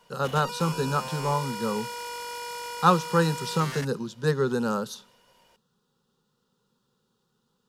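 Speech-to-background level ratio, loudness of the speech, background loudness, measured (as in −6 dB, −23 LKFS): 9.0 dB, −26.5 LKFS, −35.5 LKFS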